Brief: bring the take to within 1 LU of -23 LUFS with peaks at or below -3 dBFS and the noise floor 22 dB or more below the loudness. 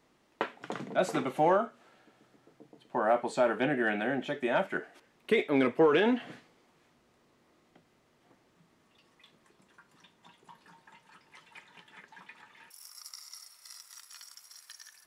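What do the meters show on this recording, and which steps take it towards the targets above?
loudness -29.5 LUFS; peak -15.5 dBFS; loudness target -23.0 LUFS
-> gain +6.5 dB

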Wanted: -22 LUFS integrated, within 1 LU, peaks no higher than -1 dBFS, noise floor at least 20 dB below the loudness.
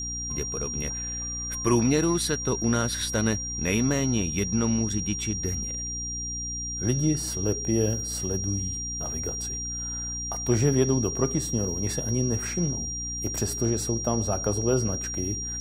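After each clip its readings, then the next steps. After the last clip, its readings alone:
hum 60 Hz; harmonics up to 300 Hz; hum level -36 dBFS; steady tone 5700 Hz; tone level -31 dBFS; loudness -26.5 LUFS; peak -9.5 dBFS; loudness target -22.0 LUFS
-> notches 60/120/180/240/300 Hz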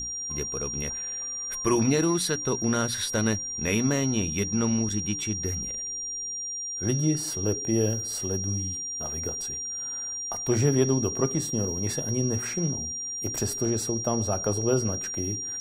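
hum none; steady tone 5700 Hz; tone level -31 dBFS
-> notch 5700 Hz, Q 30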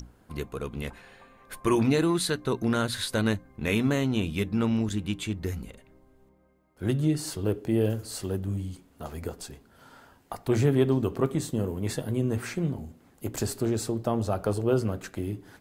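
steady tone none; loudness -28.5 LUFS; peak -10.5 dBFS; loudness target -22.0 LUFS
-> gain +6.5 dB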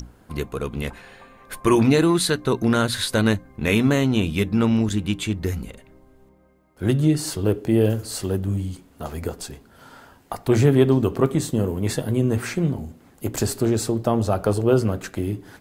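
loudness -22.0 LUFS; peak -4.0 dBFS; noise floor -54 dBFS

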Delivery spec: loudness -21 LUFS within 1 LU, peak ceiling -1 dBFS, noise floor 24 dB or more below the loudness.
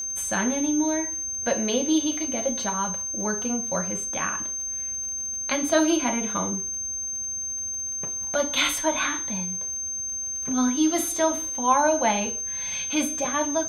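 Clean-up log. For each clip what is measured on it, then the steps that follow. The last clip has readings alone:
ticks 42/s; steady tone 6300 Hz; tone level -28 dBFS; loudness -24.5 LUFS; peak -7.0 dBFS; loudness target -21.0 LUFS
-> de-click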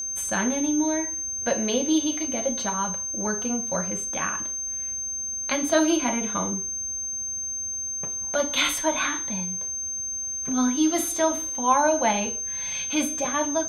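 ticks 0.073/s; steady tone 6300 Hz; tone level -28 dBFS
-> notch 6300 Hz, Q 30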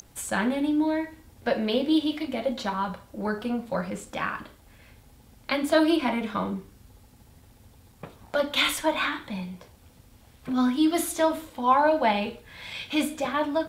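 steady tone none; loudness -26.5 LUFS; peak -7.5 dBFS; loudness target -21.0 LUFS
-> gain +5.5 dB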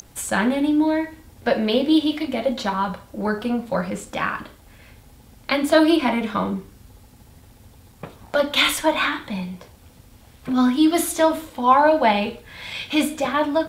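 loudness -21.0 LUFS; peak -2.0 dBFS; noise floor -50 dBFS

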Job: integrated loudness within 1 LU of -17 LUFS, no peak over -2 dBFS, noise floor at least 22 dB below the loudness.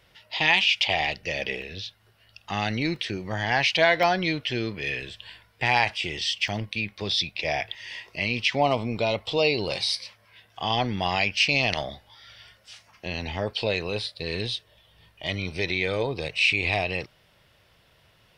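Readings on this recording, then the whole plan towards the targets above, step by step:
dropouts 4; longest dropout 2.4 ms; loudness -25.5 LUFS; peak -6.5 dBFS; loudness target -17.0 LUFS
-> interpolate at 1.62/2.96/4.03/6.48, 2.4 ms; gain +8.5 dB; limiter -2 dBFS

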